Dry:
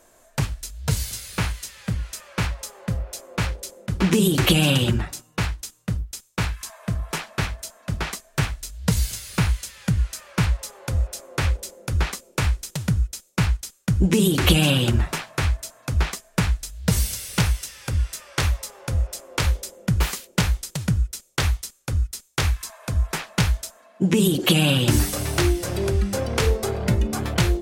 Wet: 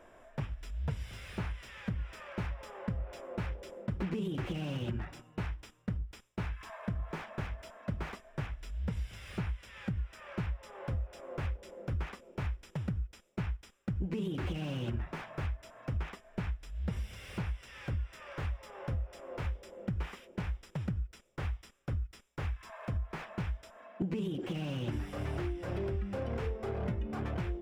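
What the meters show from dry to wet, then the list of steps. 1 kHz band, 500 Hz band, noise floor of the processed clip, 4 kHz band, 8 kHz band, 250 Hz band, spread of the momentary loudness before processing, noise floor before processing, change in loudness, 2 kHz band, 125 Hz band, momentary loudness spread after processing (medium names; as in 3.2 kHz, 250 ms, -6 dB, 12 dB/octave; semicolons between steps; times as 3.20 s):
-14.0 dB, -13.5 dB, -59 dBFS, -24.0 dB, -30.5 dB, -14.5 dB, 11 LU, -56 dBFS, -15.0 dB, -17.0 dB, -14.0 dB, 6 LU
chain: compression 16:1, threshold -31 dBFS, peak gain reduction 20.5 dB; Savitzky-Golay filter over 25 samples; slew-rate limiter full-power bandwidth 13 Hz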